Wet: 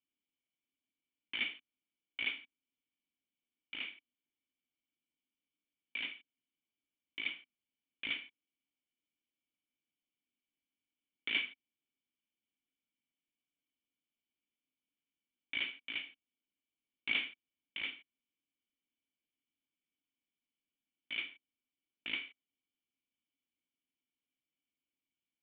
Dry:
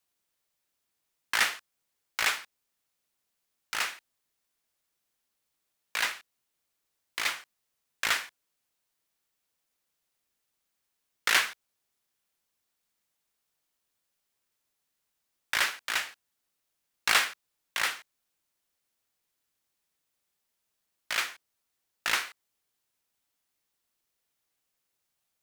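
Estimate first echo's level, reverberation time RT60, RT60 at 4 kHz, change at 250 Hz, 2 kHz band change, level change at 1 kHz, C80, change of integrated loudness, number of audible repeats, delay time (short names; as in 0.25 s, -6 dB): none, none, none, -2.5 dB, -10.5 dB, -25.0 dB, none, -10.5 dB, none, none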